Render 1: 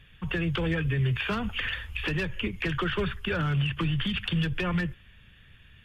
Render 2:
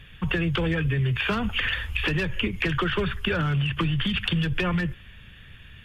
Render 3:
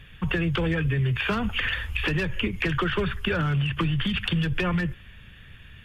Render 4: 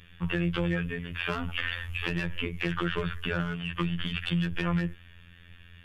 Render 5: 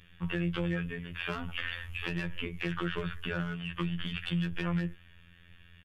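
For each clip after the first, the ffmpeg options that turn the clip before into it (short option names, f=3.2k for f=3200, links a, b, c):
-af "acompressor=threshold=-29dB:ratio=6,volume=7.5dB"
-af "equalizer=f=3.3k:t=o:w=0.77:g=-2"
-af "afftfilt=real='hypot(re,im)*cos(PI*b)':imag='0':win_size=2048:overlap=0.75,volume=-1.5dB"
-filter_complex "[0:a]asplit=2[a][b];[b]adelay=17,volume=-14dB[c];[a][c]amix=inputs=2:normalize=0,volume=-4.5dB"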